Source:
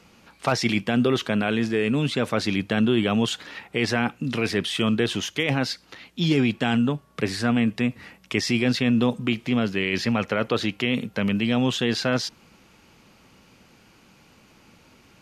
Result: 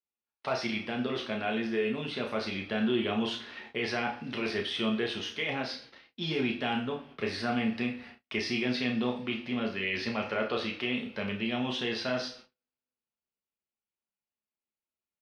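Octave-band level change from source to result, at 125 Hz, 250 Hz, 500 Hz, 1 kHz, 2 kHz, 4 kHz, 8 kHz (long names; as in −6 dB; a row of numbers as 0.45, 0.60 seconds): −14.0, −9.5, −7.0, −6.0, −6.0, −6.5, −15.0 decibels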